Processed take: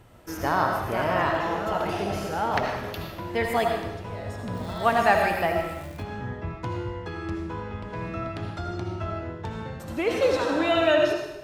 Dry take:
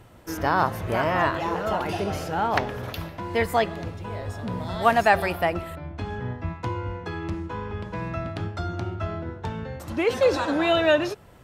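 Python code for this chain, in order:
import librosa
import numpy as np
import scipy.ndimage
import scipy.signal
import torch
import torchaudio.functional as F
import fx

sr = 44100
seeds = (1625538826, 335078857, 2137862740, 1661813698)

y = fx.rev_freeverb(x, sr, rt60_s=0.91, hf_ratio=1.0, predelay_ms=40, drr_db=2.0)
y = fx.dmg_crackle(y, sr, seeds[0], per_s=590.0, level_db=-37.0, at=(4.54, 6.02), fade=0.02)
y = F.gain(torch.from_numpy(y), -3.0).numpy()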